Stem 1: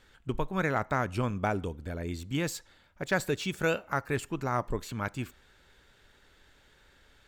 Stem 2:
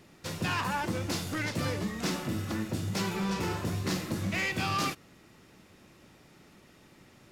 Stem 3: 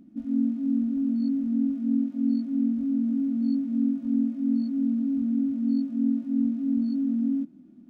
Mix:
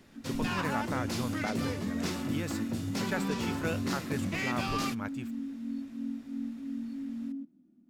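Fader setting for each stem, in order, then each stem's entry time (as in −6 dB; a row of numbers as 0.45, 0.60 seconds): −6.5, −3.5, −12.0 decibels; 0.00, 0.00, 0.00 seconds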